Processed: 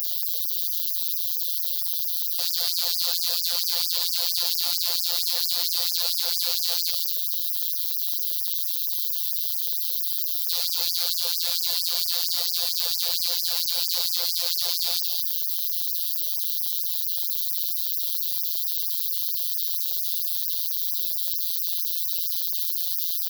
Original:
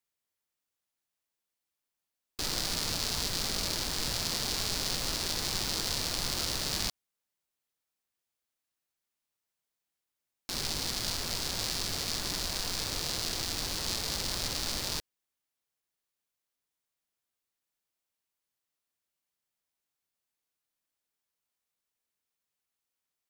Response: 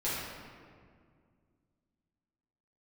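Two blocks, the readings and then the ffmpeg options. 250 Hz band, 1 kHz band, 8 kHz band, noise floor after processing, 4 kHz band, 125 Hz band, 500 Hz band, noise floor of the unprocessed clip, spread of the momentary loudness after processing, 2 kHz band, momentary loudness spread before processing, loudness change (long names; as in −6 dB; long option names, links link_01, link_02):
below −40 dB, −3.0 dB, +6.0 dB, −27 dBFS, +8.5 dB, below −40 dB, −2.0 dB, below −85 dBFS, 2 LU, −2.5 dB, 3 LU, +9.0 dB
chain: -af "aeval=exprs='val(0)+0.5*0.0282*sgn(val(0))':channel_layout=same,crystalizer=i=3:c=0,equalizer=frequency=125:width_type=o:width=1:gain=5,equalizer=frequency=250:width_type=o:width=1:gain=-4,equalizer=frequency=500:width_type=o:width=1:gain=8,equalizer=frequency=1000:width_type=o:width=1:gain=-5,equalizer=frequency=2000:width_type=o:width=1:gain=-12,equalizer=frequency=4000:width_type=o:width=1:gain=11,equalizer=frequency=8000:width_type=o:width=1:gain=-12,aecho=1:1:55.39|215.7:0.251|0.398,volume=19.5dB,asoftclip=hard,volume=-19.5dB,afftfilt=real='re*gte(hypot(re,im),0.0158)':imag='im*gte(hypot(re,im),0.0158)':win_size=1024:overlap=0.75,asubboost=boost=4:cutoff=170,afftfilt=real='hypot(re,im)*cos(PI*b)':imag='0':win_size=1024:overlap=0.75,afftfilt=real='re*gte(b*sr/1024,400*pow(4900/400,0.5+0.5*sin(2*PI*4.4*pts/sr)))':imag='im*gte(b*sr/1024,400*pow(4900/400,0.5+0.5*sin(2*PI*4.4*pts/sr)))':win_size=1024:overlap=0.75,volume=2.5dB"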